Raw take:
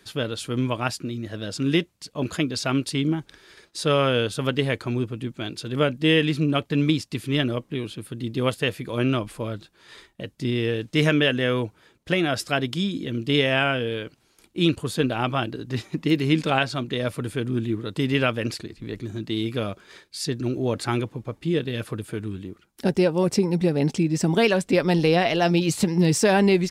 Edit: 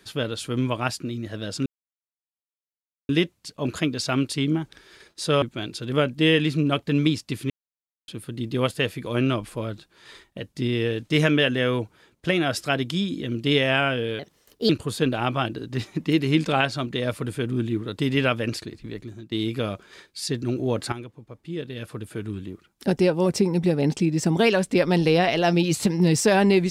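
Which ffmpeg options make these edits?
-filter_complex "[0:a]asplit=9[s0][s1][s2][s3][s4][s5][s6][s7][s8];[s0]atrim=end=1.66,asetpts=PTS-STARTPTS,afade=t=out:st=1.656:d=0.004:c=hsin,apad=pad_dur=1.43[s9];[s1]atrim=start=1.66:end=3.992,asetpts=PTS-STARTPTS,afade=t=in:d=0.004:c=hsin[s10];[s2]atrim=start=5.248:end=7.33,asetpts=PTS-STARTPTS,afade=t=out:st=2.078:d=0.004:c=hsin[s11];[s3]atrim=start=7.33:end=7.91,asetpts=PTS-STARTPTS,volume=0[s12];[s4]atrim=start=7.91:end=14.024,asetpts=PTS-STARTPTS,afade=t=in:d=0.004:c=hsin[s13];[s5]atrim=start=14.02:end=14.67,asetpts=PTS-STARTPTS,asetrate=56889,aresample=44100[s14];[s6]atrim=start=14.666:end=19.29,asetpts=PTS-STARTPTS,afade=t=out:st=4.104:d=0.52:silence=0.16788[s15];[s7]atrim=start=19.29:end=20.9,asetpts=PTS-STARTPTS,afade=t=in:d=0.004:c=hsin:silence=0.16788,afade=t=out:st=1.606:d=0.004:c=hsin:silence=0.237137[s16];[s8]atrim=start=20.9,asetpts=PTS-STARTPTS,afade=t=in:d=1.42:c=qua:silence=0.237137[s17];[s9][s10]concat=n=2:v=0:a=1[s18];[s11][s12][s13]concat=n=3:v=0:a=1[s19];[s18][s19]acrossfade=d=0.004:c1=hsin:c2=hsin[s20];[s20][s14]acrossfade=d=0.004:c1=hsin:c2=hsin[s21];[s15][s16][s17]concat=n=3:v=0:a=1[s22];[s21][s22]acrossfade=d=0.004:c1=hsin:c2=hsin"

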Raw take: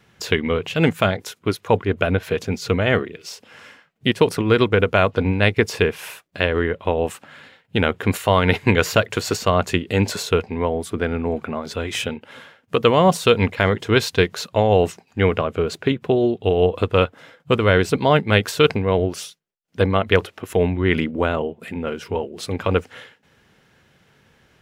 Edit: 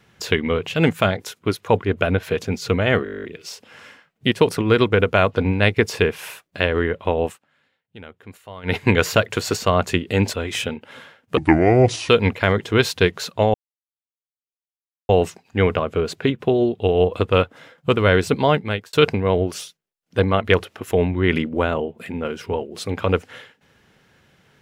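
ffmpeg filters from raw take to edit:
-filter_complex "[0:a]asplit=18[s0][s1][s2][s3][s4][s5][s6][s7][s8][s9][s10][s11][s12][s13][s14][s15][s16][s17];[s0]atrim=end=3.062[s18];[s1]atrim=start=3.038:end=3.062[s19];[s2]atrim=start=3.038:end=3.062[s20];[s3]atrim=start=3.038:end=3.062[s21];[s4]atrim=start=3.038:end=3.062[s22];[s5]atrim=start=3.038:end=3.062[s23];[s6]atrim=start=3.038:end=3.062[s24];[s7]atrim=start=3.038:end=3.062[s25];[s8]atrim=start=3.038:end=3.062[s26];[s9]atrim=start=3.038:end=3.062[s27];[s10]atrim=start=3.038:end=7.18,asetpts=PTS-STARTPTS,afade=t=out:st=4.012:d=0.13:silence=0.0891251[s28];[s11]atrim=start=7.18:end=8.43,asetpts=PTS-STARTPTS,volume=0.0891[s29];[s12]atrim=start=8.43:end=10.132,asetpts=PTS-STARTPTS,afade=t=in:d=0.13:silence=0.0891251[s30];[s13]atrim=start=11.728:end=12.774[s31];[s14]atrim=start=12.77:end=13.26,asetpts=PTS-STARTPTS,asetrate=29988,aresample=44100[s32];[s15]atrim=start=13.256:end=14.71,asetpts=PTS-STARTPTS,afade=t=out:st=1.45:d=0.004:c=hsin,apad=pad_dur=1.55[s33];[s16]atrim=start=14.71:end=18.55,asetpts=PTS-STARTPTS,afade=t=in:d=0.004:c=hsin,afade=t=out:st=3.34:d=0.5[s34];[s17]atrim=start=18.55,asetpts=PTS-STARTPTS,afade=t=in:d=0.004:c=hsin[s35];[s18][s19]acrossfade=d=0.004:c1=hsin:c2=hsin[s36];[s36][s20]acrossfade=d=0.004:c1=hsin:c2=hsin[s37];[s37][s21]acrossfade=d=0.004:c1=hsin:c2=hsin[s38];[s38][s22]acrossfade=d=0.004:c1=hsin:c2=hsin[s39];[s39][s23]acrossfade=d=0.004:c1=hsin:c2=hsin[s40];[s40][s24]acrossfade=d=0.004:c1=hsin:c2=hsin[s41];[s41][s25]acrossfade=d=0.004:c1=hsin:c2=hsin[s42];[s42][s26]acrossfade=d=0.004:c1=hsin:c2=hsin[s43];[s43][s27]acrossfade=d=0.004:c1=hsin:c2=hsin[s44];[s28][s29][s30]concat=n=3:v=0:a=1[s45];[s44][s45]acrossfade=d=0.004:c1=hsin:c2=hsin[s46];[s46][s31]acrossfade=d=0.004:c1=hsin:c2=hsin[s47];[s47][s32]acrossfade=d=0.004:c1=hsin:c2=hsin[s48];[s33][s34][s35]concat=n=3:v=0:a=1[s49];[s48][s49]acrossfade=d=0.004:c1=hsin:c2=hsin"

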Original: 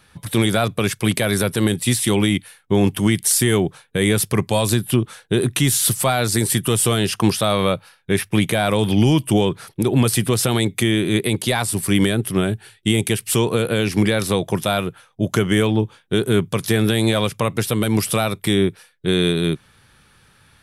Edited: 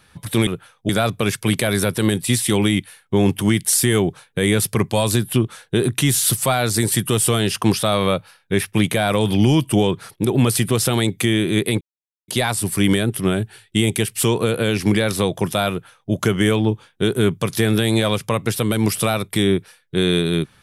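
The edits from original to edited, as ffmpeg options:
-filter_complex "[0:a]asplit=4[s0][s1][s2][s3];[s0]atrim=end=0.472[s4];[s1]atrim=start=14.808:end=15.232[s5];[s2]atrim=start=0.468:end=11.39,asetpts=PTS-STARTPTS,afade=t=out:st=10.918:d=0.004:c=hsin,apad=pad_dur=0.47[s6];[s3]atrim=start=11.39,asetpts=PTS-STARTPTS,afade=t=in:d=0.004:c=hsin[s7];[s4][s5]acrossfade=d=0.004:c1=hsin:c2=hsin[s8];[s6][s7]concat=n=2:v=0:a=1[s9];[s8][s9]acrossfade=d=0.004:c1=hsin:c2=hsin"

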